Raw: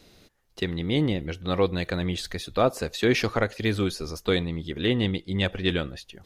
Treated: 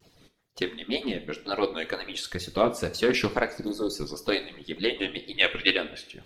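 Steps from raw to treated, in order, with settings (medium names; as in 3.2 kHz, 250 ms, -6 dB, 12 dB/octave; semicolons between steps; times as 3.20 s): harmonic-percussive separation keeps percussive; wow and flutter 140 cents; 3.48–3.94 s: spectral selection erased 1.3–3.7 kHz; 5.29–5.77 s: peaking EQ 2.5 kHz +10 dB 1 oct; two-slope reverb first 0.46 s, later 1.6 s, from -18 dB, DRR 8.5 dB; loudspeaker Doppler distortion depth 0.16 ms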